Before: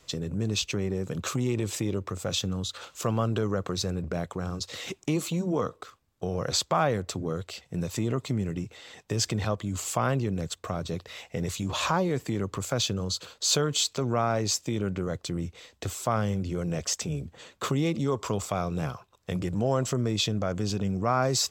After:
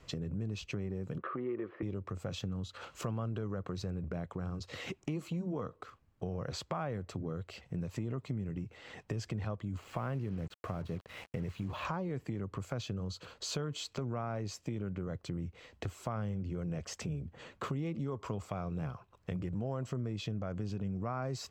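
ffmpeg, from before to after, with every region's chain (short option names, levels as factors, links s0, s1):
-filter_complex "[0:a]asettb=1/sr,asplit=3[s0][s1][s2];[s0]atrim=end=1.184[s3];[s1]atrim=start=1.18:end=1.83,asetpts=PTS-STARTPTS,afade=t=in:d=0.004:c=qsin,afade=t=out:st=0.646:d=0.004:c=qsin,deesser=1,highpass=300,equalizer=f=360:t=q:w=4:g=7,equalizer=f=520:t=q:w=4:g=3,equalizer=f=850:t=q:w=4:g=-5,equalizer=f=1200:t=q:w=4:g=10,equalizer=f=1800:t=q:w=4:g=7,equalizer=f=2500:t=q:w=4:g=-6,lowpass=f=2600:w=0.5412,lowpass=f=2600:w=1.3066[s4];[s2]atrim=start=1.826[s5];[s3][s4]acrossfade=d=0.004:c1=hsin:c2=qsin[s6];[s6][s5]acrossfade=d=0.004:c1=qsin:c2=hsin,asettb=1/sr,asplit=3[s7][s8][s9];[s7]atrim=end=9.774[s10];[s8]atrim=start=9.77:end=11.85,asetpts=PTS-STARTPTS,afade=t=in:d=0.004:c=qsin,afade=t=out:st=2.076:d=0.004:c=qsin,acrossover=split=4000[s11][s12];[s12]acompressor=threshold=0.00316:ratio=4:attack=1:release=60[s13];[s11][s13]amix=inputs=2:normalize=0,acrusher=bits=6:mix=0:aa=0.5[s14];[s9]atrim=start=11.846[s15];[s10][s14]acrossfade=d=0.004:c1=hsin:c2=qsin[s16];[s16][s15]acrossfade=d=0.004:c1=qsin:c2=hsin,bass=f=250:g=5,treble=f=4000:g=-12,bandreject=f=3600:w=12,acompressor=threshold=0.01:ratio=2.5"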